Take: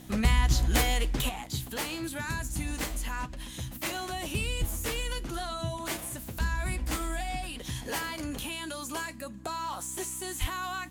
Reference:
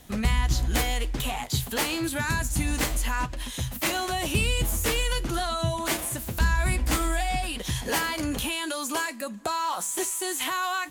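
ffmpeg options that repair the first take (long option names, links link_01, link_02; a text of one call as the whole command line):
ffmpeg -i in.wav -filter_complex "[0:a]bandreject=frequency=64.1:width_type=h:width=4,bandreject=frequency=128.2:width_type=h:width=4,bandreject=frequency=192.3:width_type=h:width=4,bandreject=frequency=256.4:width_type=h:width=4,bandreject=frequency=320.5:width_type=h:width=4,asplit=3[link_01][link_02][link_03];[link_01]afade=type=out:start_time=4.6:duration=0.02[link_04];[link_02]highpass=frequency=140:width=0.5412,highpass=frequency=140:width=1.3066,afade=type=in:start_time=4.6:duration=0.02,afade=type=out:start_time=4.72:duration=0.02[link_05];[link_03]afade=type=in:start_time=4.72:duration=0.02[link_06];[link_04][link_05][link_06]amix=inputs=3:normalize=0,asplit=3[link_07][link_08][link_09];[link_07]afade=type=out:start_time=10.4:duration=0.02[link_10];[link_08]highpass=frequency=140:width=0.5412,highpass=frequency=140:width=1.3066,afade=type=in:start_time=10.4:duration=0.02,afade=type=out:start_time=10.52:duration=0.02[link_11];[link_09]afade=type=in:start_time=10.52:duration=0.02[link_12];[link_10][link_11][link_12]amix=inputs=3:normalize=0,asetnsamples=nb_out_samples=441:pad=0,asendcmd='1.29 volume volume 7dB',volume=0dB" out.wav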